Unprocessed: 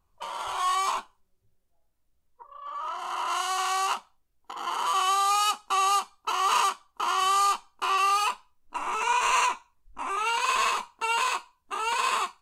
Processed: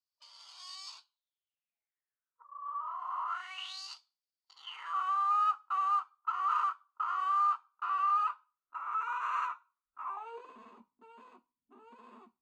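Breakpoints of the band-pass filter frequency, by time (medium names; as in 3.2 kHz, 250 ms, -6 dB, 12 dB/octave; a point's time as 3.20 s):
band-pass filter, Q 7.7
0.97 s 4.8 kHz
2.59 s 1.1 kHz
3.25 s 1.1 kHz
3.80 s 4.7 kHz
4.55 s 4.7 kHz
4.95 s 1.3 kHz
10.03 s 1.3 kHz
10.57 s 240 Hz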